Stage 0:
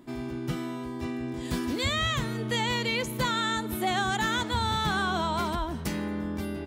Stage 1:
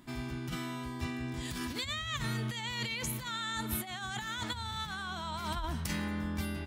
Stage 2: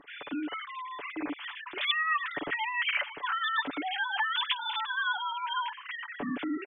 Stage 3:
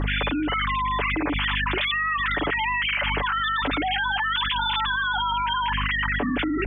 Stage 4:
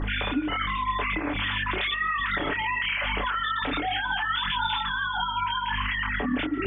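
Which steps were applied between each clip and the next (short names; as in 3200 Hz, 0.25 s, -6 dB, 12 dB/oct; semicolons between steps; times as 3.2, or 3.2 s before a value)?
negative-ratio compressor -31 dBFS, ratio -0.5; bell 410 Hz -12.5 dB 1.9 oct
sine-wave speech; comb 6.9 ms, depth 54%; gain +3 dB
hum 50 Hz, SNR 14 dB; fast leveller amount 100%
tape echo 0.141 s, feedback 58%, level -18 dB, low-pass 2300 Hz; chorus voices 6, 0.89 Hz, delay 27 ms, depth 4.1 ms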